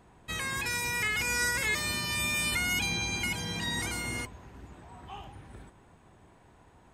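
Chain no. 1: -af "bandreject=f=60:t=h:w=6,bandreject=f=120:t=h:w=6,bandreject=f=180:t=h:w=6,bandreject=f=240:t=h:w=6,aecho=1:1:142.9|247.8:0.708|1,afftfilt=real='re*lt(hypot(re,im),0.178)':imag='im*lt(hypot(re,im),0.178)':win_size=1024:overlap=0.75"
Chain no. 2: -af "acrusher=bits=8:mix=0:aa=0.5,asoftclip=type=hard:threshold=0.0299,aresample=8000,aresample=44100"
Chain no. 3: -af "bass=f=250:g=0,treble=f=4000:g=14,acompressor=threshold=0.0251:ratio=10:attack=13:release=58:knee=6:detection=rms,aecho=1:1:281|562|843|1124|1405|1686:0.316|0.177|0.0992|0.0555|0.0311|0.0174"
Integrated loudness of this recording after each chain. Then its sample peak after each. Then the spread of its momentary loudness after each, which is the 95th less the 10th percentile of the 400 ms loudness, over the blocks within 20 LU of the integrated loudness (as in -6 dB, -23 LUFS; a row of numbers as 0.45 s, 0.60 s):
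-29.0 LUFS, -33.5 LUFS, -31.0 LUFS; -15.5 dBFS, -27.5 dBFS, -19.0 dBFS; 18 LU, 18 LU, 14 LU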